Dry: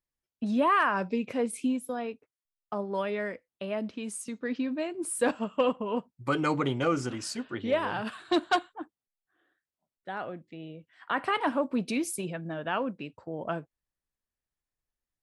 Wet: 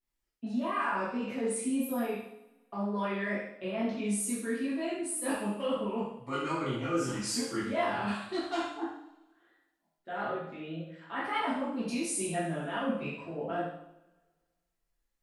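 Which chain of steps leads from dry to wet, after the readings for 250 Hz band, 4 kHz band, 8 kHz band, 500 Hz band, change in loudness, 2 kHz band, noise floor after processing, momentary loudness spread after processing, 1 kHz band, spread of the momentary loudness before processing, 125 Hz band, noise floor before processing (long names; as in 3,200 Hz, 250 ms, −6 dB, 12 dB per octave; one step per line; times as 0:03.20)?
−1.5 dB, −2.5 dB, +3.0 dB, −3.5 dB, −3.0 dB, −3.5 dB, −82 dBFS, 9 LU, −4.0 dB, 13 LU, −1.5 dB, below −85 dBFS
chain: dynamic equaliser 9,700 Hz, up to +4 dB, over −48 dBFS, Q 0.81
reversed playback
downward compressor 6 to 1, threshold −34 dBFS, peak gain reduction 13.5 dB
reversed playback
multi-voice chorus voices 6, 1.1 Hz, delay 22 ms, depth 3.9 ms
tape wow and flutter 94 cents
on a send: flutter between parallel walls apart 11.8 metres, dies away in 0.47 s
on the sum: coupled-rooms reverb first 0.58 s, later 1.6 s, from −20 dB, DRR −6.5 dB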